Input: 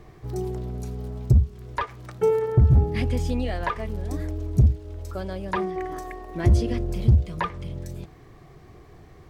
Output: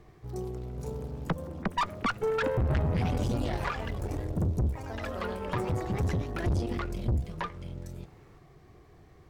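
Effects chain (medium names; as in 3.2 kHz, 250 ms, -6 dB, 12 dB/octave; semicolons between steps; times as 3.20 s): 1.27–1.84 s: formants replaced by sine waves; ever faster or slower copies 563 ms, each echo +3 st, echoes 3; valve stage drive 20 dB, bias 0.65; trim -3.5 dB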